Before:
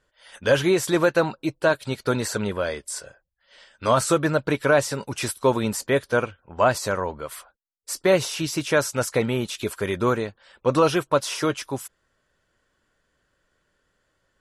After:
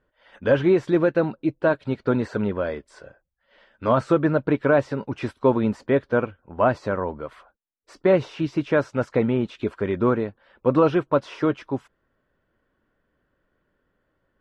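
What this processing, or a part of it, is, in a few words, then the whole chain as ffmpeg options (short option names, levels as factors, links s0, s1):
phone in a pocket: -filter_complex "[0:a]lowpass=3200,equalizer=f=260:t=o:w=1:g=5,highshelf=f=2400:g=-10.5,asettb=1/sr,asplit=3[s0][s1][s2];[s0]atrim=end=0.874[s3];[s1]atrim=start=0.87:end=1.59,asetpts=PTS-STARTPTS,afade=t=in:d=0.004:c=qsin,afade=t=out:st=0.716:d=0.004:c=qsin,equalizer=f=1000:t=o:w=1.1:g=-5.5[s4];[s2]atrim=start=1.586[s5];[s3][s4]acrossfade=d=0.004:c1=hsin:c2=qsin[s6];[s6][s5]acrossfade=d=0.004:c1=qsin:c2=hsin"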